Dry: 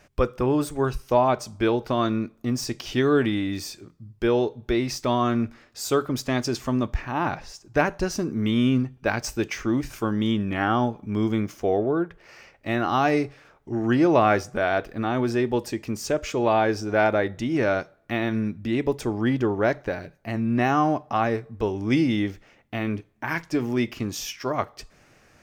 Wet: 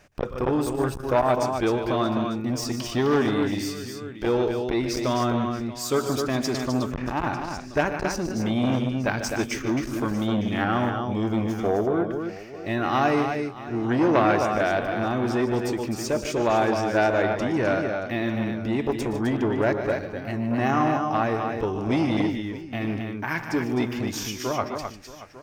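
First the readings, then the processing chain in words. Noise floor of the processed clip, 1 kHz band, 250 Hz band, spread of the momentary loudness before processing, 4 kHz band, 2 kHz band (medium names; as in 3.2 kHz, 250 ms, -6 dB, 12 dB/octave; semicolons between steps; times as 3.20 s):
-38 dBFS, 0.0 dB, -0.5 dB, 9 LU, 0.0 dB, 0.0 dB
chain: multi-tap echo 118/149/258/627/898 ms -15.5/-11/-6.5/-18/-17.5 dB; transformer saturation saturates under 940 Hz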